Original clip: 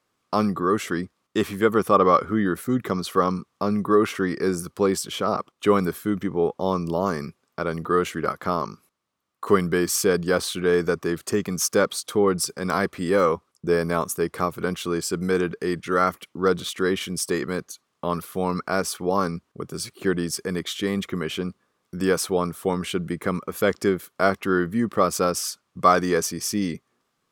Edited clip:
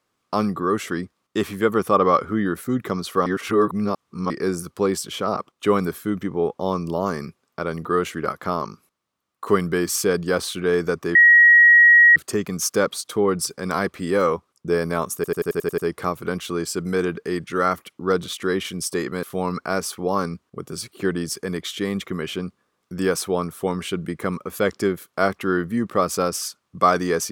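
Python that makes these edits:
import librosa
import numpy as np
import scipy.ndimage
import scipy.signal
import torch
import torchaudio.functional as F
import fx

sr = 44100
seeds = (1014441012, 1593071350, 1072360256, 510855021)

y = fx.edit(x, sr, fx.reverse_span(start_s=3.26, length_s=1.04),
    fx.insert_tone(at_s=11.15, length_s=1.01, hz=1900.0, db=-8.0),
    fx.stutter(start_s=14.14, slice_s=0.09, count=8),
    fx.cut(start_s=17.59, length_s=0.66), tone=tone)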